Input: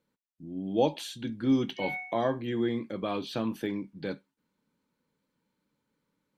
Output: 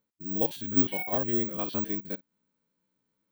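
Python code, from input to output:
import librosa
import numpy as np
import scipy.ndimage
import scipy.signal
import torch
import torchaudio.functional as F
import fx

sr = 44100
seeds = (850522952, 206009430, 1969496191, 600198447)

y = fx.spec_steps(x, sr, hold_ms=100)
y = (np.kron(y[::2], np.eye(2)[0]) * 2)[:len(y)]
y = fx.stretch_vocoder(y, sr, factor=0.52)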